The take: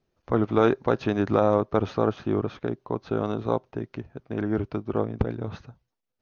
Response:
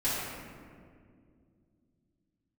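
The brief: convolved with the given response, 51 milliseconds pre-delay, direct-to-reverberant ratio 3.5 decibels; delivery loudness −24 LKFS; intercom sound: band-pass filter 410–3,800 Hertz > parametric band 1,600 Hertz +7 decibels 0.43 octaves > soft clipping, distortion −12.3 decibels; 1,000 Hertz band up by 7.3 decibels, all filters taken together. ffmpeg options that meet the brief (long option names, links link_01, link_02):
-filter_complex "[0:a]equalizer=frequency=1000:width_type=o:gain=8.5,asplit=2[link_01][link_02];[1:a]atrim=start_sample=2205,adelay=51[link_03];[link_02][link_03]afir=irnorm=-1:irlink=0,volume=-13dB[link_04];[link_01][link_04]amix=inputs=2:normalize=0,highpass=410,lowpass=3800,equalizer=frequency=1600:width_type=o:width=0.43:gain=7,asoftclip=threshold=-12.5dB,volume=2dB"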